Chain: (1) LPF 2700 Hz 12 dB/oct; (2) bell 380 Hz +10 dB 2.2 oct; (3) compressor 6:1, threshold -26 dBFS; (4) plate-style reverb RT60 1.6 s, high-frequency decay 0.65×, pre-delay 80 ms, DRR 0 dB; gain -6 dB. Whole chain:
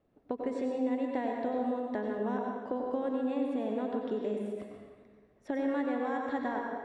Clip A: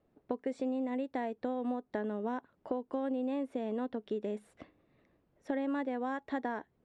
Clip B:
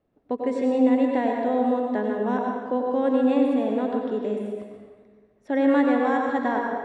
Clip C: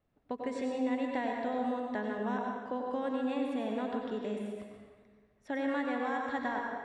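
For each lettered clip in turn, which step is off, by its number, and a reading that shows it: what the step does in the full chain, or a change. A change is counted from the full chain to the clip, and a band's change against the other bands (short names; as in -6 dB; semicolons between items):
4, crest factor change +3.0 dB; 3, mean gain reduction 9.0 dB; 2, 4 kHz band +5.5 dB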